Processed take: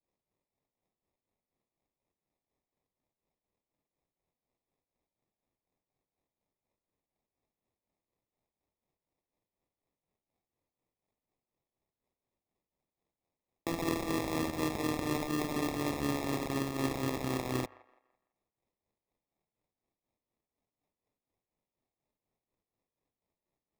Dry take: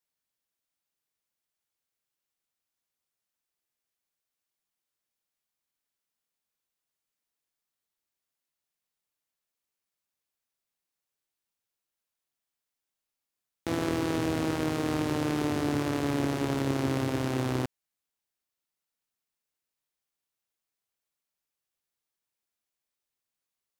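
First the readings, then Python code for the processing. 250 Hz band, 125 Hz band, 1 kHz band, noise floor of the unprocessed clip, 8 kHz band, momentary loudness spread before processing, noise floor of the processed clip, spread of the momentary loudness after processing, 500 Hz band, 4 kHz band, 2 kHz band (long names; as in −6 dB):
−5.0 dB, −7.0 dB, −3.0 dB, below −85 dBFS, −1.5 dB, 3 LU, below −85 dBFS, 3 LU, −4.5 dB, −3.0 dB, −3.5 dB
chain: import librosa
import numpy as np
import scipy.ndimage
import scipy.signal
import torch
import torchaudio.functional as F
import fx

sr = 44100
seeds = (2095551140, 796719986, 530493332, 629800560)

y = fx.low_shelf(x, sr, hz=150.0, db=-7.5)
y = fx.hum_notches(y, sr, base_hz=50, count=2)
y = fx.harmonic_tremolo(y, sr, hz=4.1, depth_pct=70, crossover_hz=870.0)
y = fx.sample_hold(y, sr, seeds[0], rate_hz=1500.0, jitter_pct=0)
y = fx.echo_wet_bandpass(y, sr, ms=167, feedback_pct=33, hz=1100.0, wet_db=-18.0)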